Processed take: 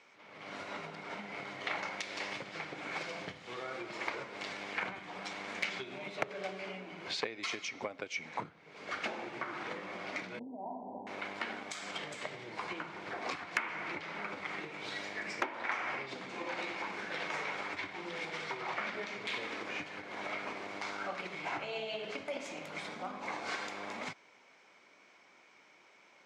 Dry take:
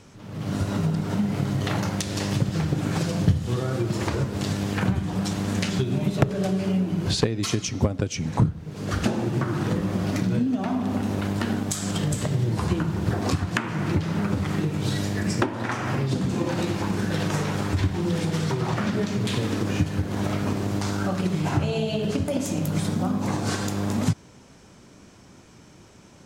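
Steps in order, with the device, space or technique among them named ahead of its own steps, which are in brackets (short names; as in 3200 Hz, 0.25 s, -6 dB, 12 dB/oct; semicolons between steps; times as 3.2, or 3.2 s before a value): megaphone (BPF 640–3900 Hz; bell 2200 Hz +12 dB 0.21 oct; hard clip -12.5 dBFS, distortion -25 dB); 10.39–11.07 Chebyshev low-pass 980 Hz, order 8; gain -6.5 dB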